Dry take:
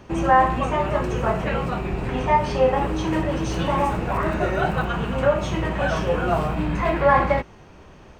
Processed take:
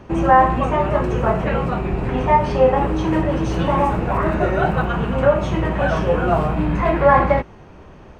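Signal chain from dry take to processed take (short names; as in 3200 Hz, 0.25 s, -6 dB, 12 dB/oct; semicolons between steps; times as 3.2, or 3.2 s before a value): high shelf 2700 Hz -9.5 dB; gain +4.5 dB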